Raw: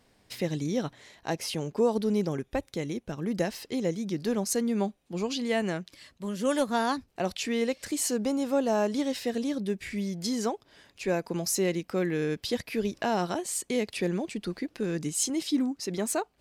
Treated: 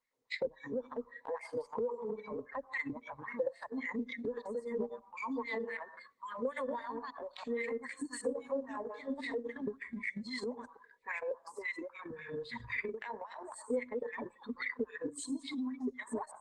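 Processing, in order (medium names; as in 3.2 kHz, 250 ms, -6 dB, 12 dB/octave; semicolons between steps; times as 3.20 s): chunks repeated in reverse 111 ms, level -1 dB; 12.10–12.75 s: resonant low shelf 250 Hz +9.5 dB, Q 1.5; wah-wah 3.7 Hz 380–2200 Hz, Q 2.7; reverberation RT60 0.45 s, pre-delay 81 ms, DRR 13.5 dB; spectral noise reduction 23 dB; compression 16:1, threshold -45 dBFS, peak gain reduction 23.5 dB; transient shaper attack +10 dB, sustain -7 dB; rippled EQ curve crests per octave 0.99, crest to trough 17 dB; transient shaper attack -8 dB, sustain +6 dB; 5.48–6.48 s: high-pass 66 Hz 12 dB/octave; trim +4.5 dB; Opus 24 kbps 48 kHz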